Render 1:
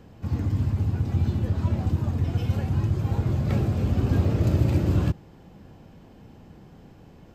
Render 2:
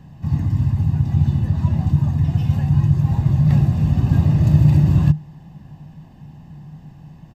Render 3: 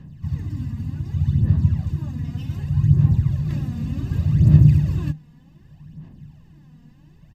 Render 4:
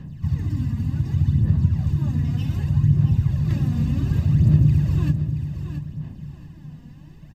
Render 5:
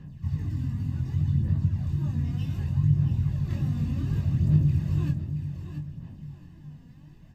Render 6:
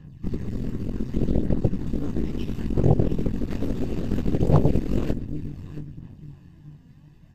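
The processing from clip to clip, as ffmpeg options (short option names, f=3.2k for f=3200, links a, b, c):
-af "equalizer=f=150:t=o:w=0.3:g=15,aecho=1:1:1.1:0.64"
-af "aphaser=in_gain=1:out_gain=1:delay=4.2:decay=0.62:speed=0.66:type=sinusoidal,equalizer=f=780:t=o:w=0.71:g=-11,volume=-6.5dB"
-filter_complex "[0:a]acompressor=threshold=-23dB:ratio=2,asplit=2[a][b];[b]aecho=0:1:676|1352|2028:0.355|0.0923|0.024[c];[a][c]amix=inputs=2:normalize=0,volume=4.5dB"
-af "flanger=delay=20:depth=3.4:speed=2.4,volume=-3.5dB"
-af "aeval=exprs='0.335*(cos(1*acos(clip(val(0)/0.335,-1,1)))-cos(1*PI/2))+0.0841*(cos(7*acos(clip(val(0)/0.335,-1,1)))-cos(7*PI/2))+0.0668*(cos(8*acos(clip(val(0)/0.335,-1,1)))-cos(8*PI/2))':c=same,volume=2dB" -ar 32000 -c:a libmp3lame -b:a 96k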